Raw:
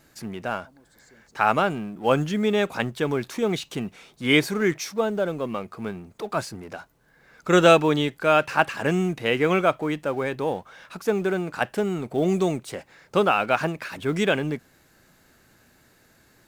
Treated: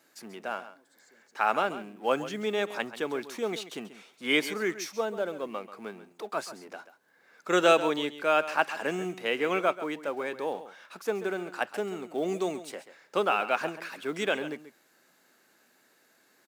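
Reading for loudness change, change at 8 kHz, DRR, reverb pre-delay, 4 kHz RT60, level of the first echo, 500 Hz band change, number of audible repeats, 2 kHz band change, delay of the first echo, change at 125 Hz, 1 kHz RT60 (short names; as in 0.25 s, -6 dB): -6.0 dB, -5.0 dB, none, none, none, -13.5 dB, -6.0 dB, 1, -5.0 dB, 0.136 s, -17.5 dB, none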